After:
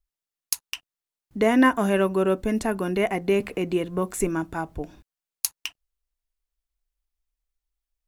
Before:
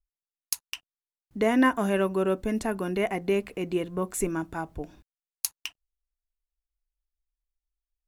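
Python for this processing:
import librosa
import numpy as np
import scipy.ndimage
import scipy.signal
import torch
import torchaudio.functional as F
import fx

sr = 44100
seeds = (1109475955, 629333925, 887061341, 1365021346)

y = fx.band_squash(x, sr, depth_pct=40, at=(3.4, 4.2))
y = y * 10.0 ** (3.5 / 20.0)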